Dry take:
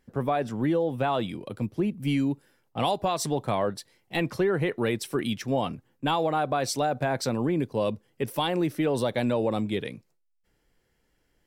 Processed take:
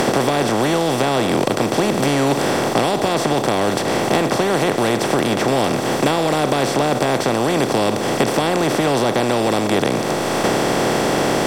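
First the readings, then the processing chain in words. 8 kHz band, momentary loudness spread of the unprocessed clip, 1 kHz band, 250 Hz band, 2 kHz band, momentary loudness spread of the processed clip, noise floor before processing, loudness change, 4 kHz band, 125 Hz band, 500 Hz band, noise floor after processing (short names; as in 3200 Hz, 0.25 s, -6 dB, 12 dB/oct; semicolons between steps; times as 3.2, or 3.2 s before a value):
+14.0 dB, 7 LU, +11.0 dB, +9.5 dB, +13.5 dB, 1 LU, -72 dBFS, +10.0 dB, +13.0 dB, +8.0 dB, +11.0 dB, -22 dBFS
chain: per-bin compression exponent 0.2; vocal rider within 3 dB; bell 630 Hz +2.5 dB 0.23 oct; three-band squash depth 100%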